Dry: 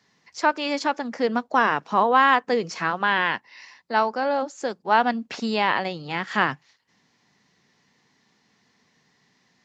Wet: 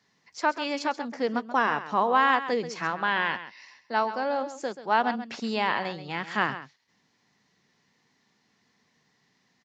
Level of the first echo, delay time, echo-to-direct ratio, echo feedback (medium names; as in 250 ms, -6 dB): -12.5 dB, 133 ms, -12.5 dB, no regular repeats